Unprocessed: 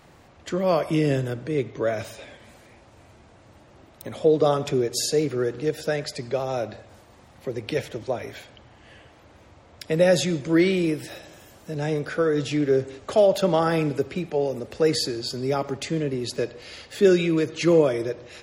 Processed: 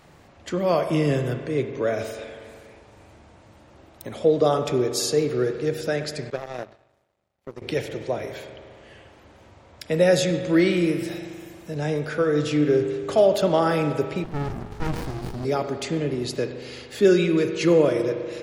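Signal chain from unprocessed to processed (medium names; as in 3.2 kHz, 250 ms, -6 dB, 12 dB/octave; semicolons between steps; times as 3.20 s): spring tank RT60 2.1 s, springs 40 ms, chirp 60 ms, DRR 7.5 dB; 6.30–7.62 s: power-law waveshaper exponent 2; 14.24–15.45 s: sliding maximum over 65 samples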